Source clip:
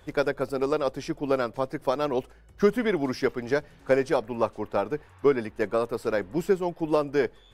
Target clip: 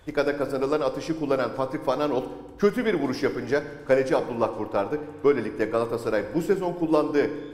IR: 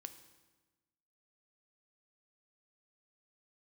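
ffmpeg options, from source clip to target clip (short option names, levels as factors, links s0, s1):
-filter_complex "[1:a]atrim=start_sample=2205,asetrate=41895,aresample=44100[s0];[0:a][s0]afir=irnorm=-1:irlink=0,volume=2.11"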